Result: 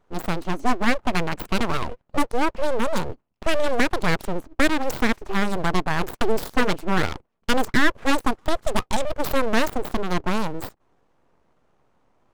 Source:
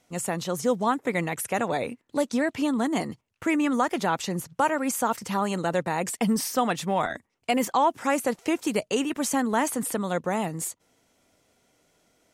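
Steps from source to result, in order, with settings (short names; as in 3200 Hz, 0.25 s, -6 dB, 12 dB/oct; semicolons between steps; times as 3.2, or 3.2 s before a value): Wiener smoothing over 25 samples; full-wave rectifier; gain +7 dB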